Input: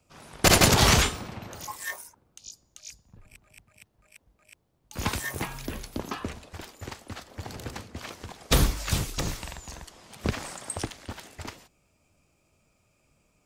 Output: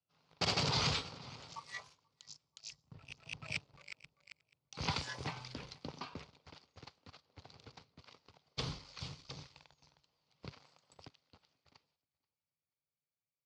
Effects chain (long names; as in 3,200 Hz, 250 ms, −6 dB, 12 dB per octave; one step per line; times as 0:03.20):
source passing by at 0:03.53, 24 m/s, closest 2.1 metres
repeating echo 483 ms, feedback 34%, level −21 dB
leveller curve on the samples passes 2
loudspeaker in its box 110–5,400 Hz, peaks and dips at 150 Hz +6 dB, 210 Hz −9 dB, 340 Hz −8 dB, 660 Hz −4 dB, 1,700 Hz −8 dB, 4,600 Hz +7 dB
level +11.5 dB